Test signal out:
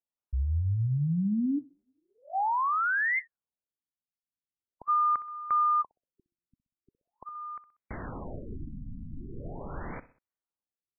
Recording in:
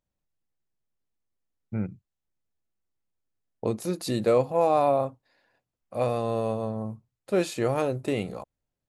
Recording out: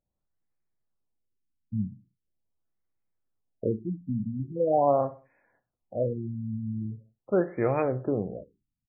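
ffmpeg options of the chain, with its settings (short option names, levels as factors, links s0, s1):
-af "aecho=1:1:63|126|189:0.15|0.0598|0.0239,afftfilt=real='re*lt(b*sr/1024,260*pow(2600/260,0.5+0.5*sin(2*PI*0.42*pts/sr)))':imag='im*lt(b*sr/1024,260*pow(2600/260,0.5+0.5*sin(2*PI*0.42*pts/sr)))':win_size=1024:overlap=0.75"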